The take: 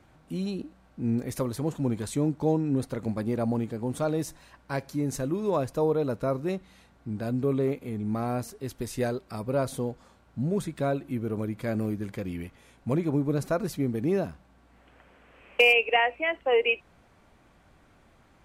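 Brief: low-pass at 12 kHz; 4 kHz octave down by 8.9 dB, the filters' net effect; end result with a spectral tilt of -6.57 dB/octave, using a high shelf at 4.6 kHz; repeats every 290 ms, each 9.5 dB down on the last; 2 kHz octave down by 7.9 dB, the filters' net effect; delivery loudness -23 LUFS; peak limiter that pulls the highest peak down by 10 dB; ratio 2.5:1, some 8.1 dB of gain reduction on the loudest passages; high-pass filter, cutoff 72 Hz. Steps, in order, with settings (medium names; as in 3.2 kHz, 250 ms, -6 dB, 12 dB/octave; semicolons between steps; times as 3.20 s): high-pass 72 Hz; low-pass 12 kHz; peaking EQ 2 kHz -5 dB; peaking EQ 4 kHz -8.5 dB; treble shelf 4.6 kHz -7 dB; compression 2.5:1, threshold -31 dBFS; peak limiter -28 dBFS; feedback delay 290 ms, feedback 33%, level -9.5 dB; trim +14.5 dB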